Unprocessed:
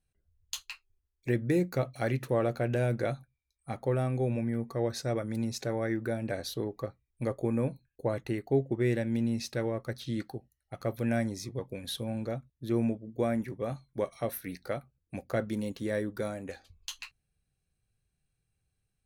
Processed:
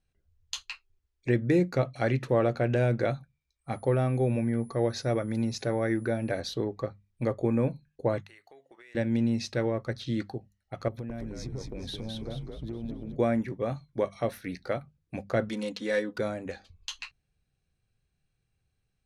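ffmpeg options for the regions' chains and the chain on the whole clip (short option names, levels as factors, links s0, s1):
-filter_complex "[0:a]asettb=1/sr,asplit=3[s0][s1][s2];[s0]atrim=end=3.714[s3];[s1]atrim=start=3.71:end=6.4,asetpts=PTS-STARTPTS,afade=t=in:d=0.004:c=qsin,afade=t=out:st=2.686:d=0.004:c=qsin,equalizer=f=8900:w=7.2:g=-12.5,aeval=exprs='val(0)+0.00282*sin(2*PI*10000*n/s)':c=same[s4];[s2]atrim=start=6.396[s5];[s3][s4]acrossfade=d=0.004:c1=hsin:c2=qsin[s6];[s6][s5]acrossfade=d=0.004:c1=qsin:c2=hsin,asettb=1/sr,asplit=3[s7][s8][s9];[s7]atrim=end=8.214[s10];[s8]atrim=start=8.21:end=8.95,asetpts=PTS-STARTPTS,afade=t=in:d=0.004:c=qsin,afade=t=out:st=0.736:d=0.004:c=qsin,highpass=1200,highshelf=f=11000:g=10.5,acompressor=threshold=0.00224:ratio=8:attack=3.2:release=140:knee=1:detection=peak[s11];[s9]atrim=start=8.946[s12];[s10][s11]acrossfade=d=0.004:c1=hsin:c2=qsin[s13];[s13][s12]acrossfade=d=0.004:c1=qsin:c2=hsin,asettb=1/sr,asplit=3[s14][s15][s16];[s14]atrim=end=10.884[s17];[s15]atrim=start=10.88:end=13.16,asetpts=PTS-STARTPTS,afade=t=in:d=0.004:c=qsin,afade=t=out:st=2.276:d=0.004:c=qsin,tiltshelf=f=680:g=4.5,acompressor=threshold=0.0158:ratio=16:attack=3.2:release=140:knee=1:detection=peak,asplit=6[s18][s19][s20][s21][s22][s23];[s19]adelay=214,afreqshift=-81,volume=0.708[s24];[s20]adelay=428,afreqshift=-162,volume=0.299[s25];[s21]adelay=642,afreqshift=-243,volume=0.124[s26];[s22]adelay=856,afreqshift=-324,volume=0.0525[s27];[s23]adelay=1070,afreqshift=-405,volume=0.0221[s28];[s18][s24][s25][s26][s27][s28]amix=inputs=6:normalize=0,atrim=end_sample=100548[s29];[s16]atrim=start=13.156[s30];[s17][s29]acrossfade=d=0.004:c1=hsin:c2=qsin[s31];[s31][s30]acrossfade=d=0.004:c1=qsin:c2=hsin,asettb=1/sr,asplit=3[s32][s33][s34];[s32]atrim=end=15.494[s35];[s33]atrim=start=15.49:end=16.19,asetpts=PTS-STARTPTS,afade=t=in:d=0.004:c=qsin,afade=t=out:st=0.696:d=0.004:c=qsin,aemphasis=mode=production:type=riaa,aecho=1:1:4:0.77,atrim=end_sample=30870,adynamicsmooth=sensitivity=8:basefreq=3200[s36];[s34]atrim=start=16.186[s37];[s35][s36]acrossfade=d=0.004:c1=hsin:c2=qsin[s38];[s38][s37]acrossfade=d=0.004:c1=qsin:c2=hsin,lowpass=6100,bandreject=f=50:t=h:w=6,bandreject=f=100:t=h:w=6,bandreject=f=150:t=h:w=6,bandreject=f=200:t=h:w=6,volume=1.5"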